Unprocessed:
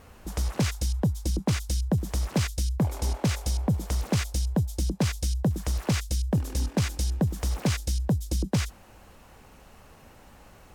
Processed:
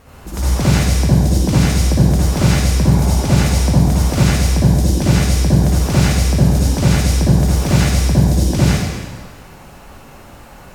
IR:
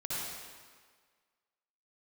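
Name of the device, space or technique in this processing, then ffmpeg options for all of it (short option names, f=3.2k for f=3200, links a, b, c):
stairwell: -filter_complex "[1:a]atrim=start_sample=2205[a];[0:a][a]afir=irnorm=-1:irlink=0,volume=9dB"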